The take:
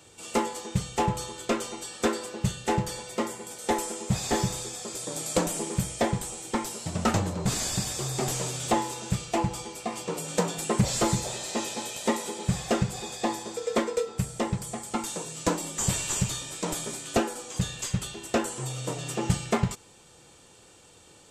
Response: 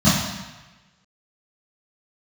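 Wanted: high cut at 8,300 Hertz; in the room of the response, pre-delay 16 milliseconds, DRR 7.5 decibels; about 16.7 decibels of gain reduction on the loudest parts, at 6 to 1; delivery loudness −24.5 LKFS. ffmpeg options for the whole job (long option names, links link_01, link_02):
-filter_complex "[0:a]lowpass=8300,acompressor=threshold=-39dB:ratio=6,asplit=2[link_01][link_02];[1:a]atrim=start_sample=2205,adelay=16[link_03];[link_02][link_03]afir=irnorm=-1:irlink=0,volume=-28.5dB[link_04];[link_01][link_04]amix=inputs=2:normalize=0,volume=14dB"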